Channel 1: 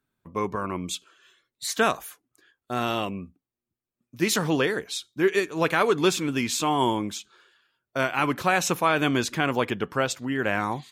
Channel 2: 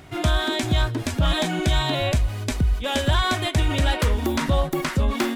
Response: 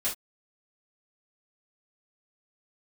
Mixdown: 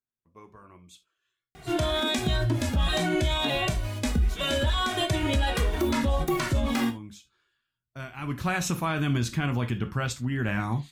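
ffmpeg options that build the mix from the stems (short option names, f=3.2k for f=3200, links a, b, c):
-filter_complex "[0:a]asubboost=boost=9:cutoff=150,volume=-6.5dB,afade=t=in:st=6.86:d=0.35:silence=0.473151,afade=t=in:st=8.21:d=0.28:silence=0.316228,asplit=2[a][b];[b]volume=-10dB[c];[1:a]asplit=2[d][e];[e]adelay=2.1,afreqshift=-1.5[f];[d][f]amix=inputs=2:normalize=1,adelay=1550,volume=-0.5dB,asplit=2[g][h];[h]volume=-9.5dB[i];[2:a]atrim=start_sample=2205[j];[c][i]amix=inputs=2:normalize=0[k];[k][j]afir=irnorm=-1:irlink=0[l];[a][g][l]amix=inputs=3:normalize=0,alimiter=limit=-16.5dB:level=0:latency=1:release=61"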